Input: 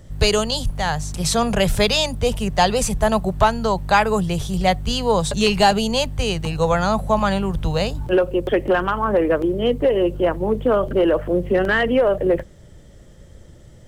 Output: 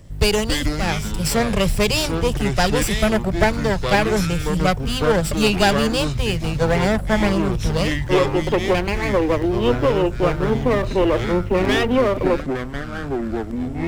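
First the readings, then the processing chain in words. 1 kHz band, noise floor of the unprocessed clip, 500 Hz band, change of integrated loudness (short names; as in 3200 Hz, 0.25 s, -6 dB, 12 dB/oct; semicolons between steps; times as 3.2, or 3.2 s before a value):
-3.0 dB, -45 dBFS, -0.5 dB, -0.5 dB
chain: minimum comb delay 0.38 ms; echoes that change speed 0.185 s, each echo -6 st, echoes 2, each echo -6 dB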